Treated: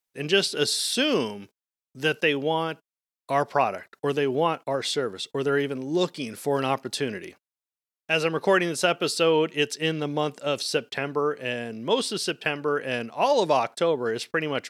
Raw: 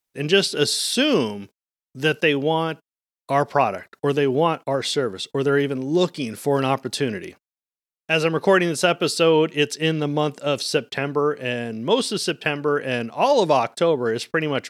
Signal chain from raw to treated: bass shelf 260 Hz -5.5 dB; trim -3 dB

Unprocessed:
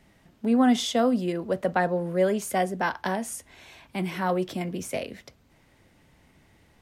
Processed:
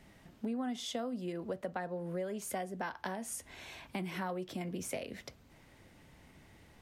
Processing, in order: compression 6:1, threshold -36 dBFS, peak gain reduction 18.5 dB

